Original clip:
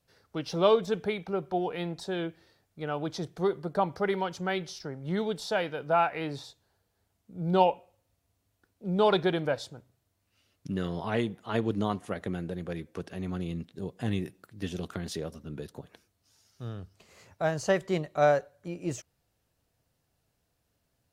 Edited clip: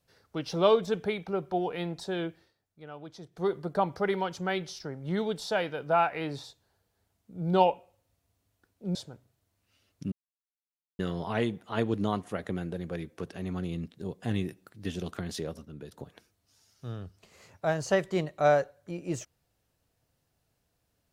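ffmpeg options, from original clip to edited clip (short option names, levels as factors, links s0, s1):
-filter_complex "[0:a]asplit=7[s0][s1][s2][s3][s4][s5][s6];[s0]atrim=end=2.53,asetpts=PTS-STARTPTS,afade=t=out:st=2.27:d=0.26:c=qsin:silence=0.266073[s7];[s1]atrim=start=2.53:end=3.31,asetpts=PTS-STARTPTS,volume=0.266[s8];[s2]atrim=start=3.31:end=8.952,asetpts=PTS-STARTPTS,afade=t=in:d=0.26:c=qsin:silence=0.266073[s9];[s3]atrim=start=9.588:end=10.76,asetpts=PTS-STARTPTS,afade=t=out:st=1.168:d=0.004:c=hsin,apad=pad_dur=0.87[s10];[s4]atrim=start=10.76:end=15.422,asetpts=PTS-STARTPTS,afade=t=in:d=0.004:c=hsin[s11];[s5]atrim=start=15.418:end=15.692,asetpts=PTS-STARTPTS,volume=0.562[s12];[s6]atrim=start=15.688[s13];[s7][s8][s9]concat=n=3:v=0:a=1[s14];[s10][s11]concat=n=2:v=0:a=1[s15];[s14][s15]acrossfade=d=0.004:c1=hsin:c2=hsin[s16];[s16][s12]acrossfade=d=0.004:c1=hsin:c2=hsin[s17];[s17][s13]acrossfade=d=0.004:c1=hsin:c2=hsin"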